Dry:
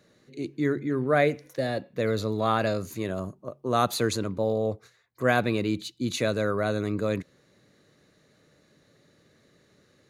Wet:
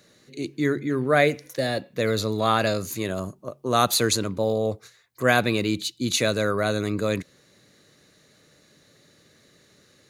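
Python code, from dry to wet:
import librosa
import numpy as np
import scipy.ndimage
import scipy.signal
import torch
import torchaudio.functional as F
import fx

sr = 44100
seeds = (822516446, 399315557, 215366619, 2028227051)

y = fx.high_shelf(x, sr, hz=2500.0, db=9.0)
y = y * 10.0 ** (2.0 / 20.0)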